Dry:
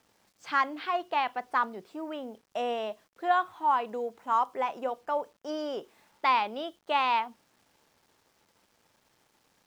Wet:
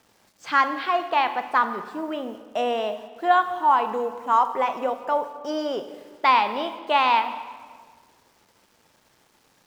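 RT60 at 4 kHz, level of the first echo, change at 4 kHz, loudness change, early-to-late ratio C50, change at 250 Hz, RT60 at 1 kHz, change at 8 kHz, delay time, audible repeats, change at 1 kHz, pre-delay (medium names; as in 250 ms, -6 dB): 1.3 s, no echo, +7.0 dB, +7.0 dB, 10.5 dB, +7.0 dB, 1.6 s, no reading, no echo, no echo, +7.0 dB, 24 ms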